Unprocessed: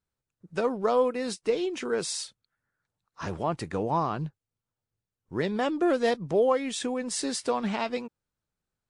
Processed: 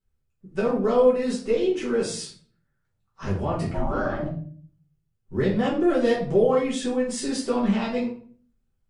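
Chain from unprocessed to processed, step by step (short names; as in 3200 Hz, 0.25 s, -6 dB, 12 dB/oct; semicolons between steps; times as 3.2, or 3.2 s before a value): low shelf 200 Hz +10 dB; 3.69–4.23 ring modulator 450 Hz; shoebox room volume 45 m³, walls mixed, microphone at 1.5 m; gain -7.5 dB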